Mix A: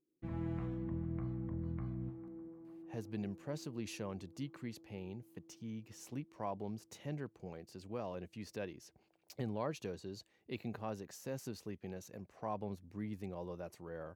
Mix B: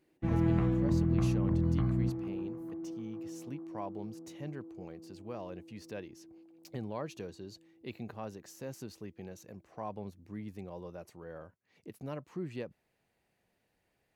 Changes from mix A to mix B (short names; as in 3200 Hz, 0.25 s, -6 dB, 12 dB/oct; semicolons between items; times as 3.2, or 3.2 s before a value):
speech: entry -2.65 s; background +11.5 dB